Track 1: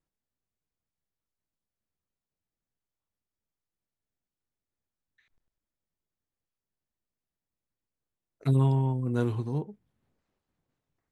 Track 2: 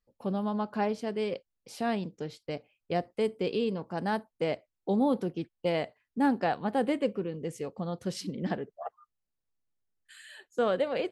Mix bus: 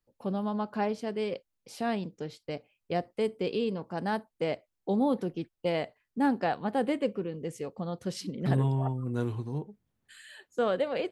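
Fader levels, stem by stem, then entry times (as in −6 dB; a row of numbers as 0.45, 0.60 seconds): −3.5, −0.5 decibels; 0.00, 0.00 seconds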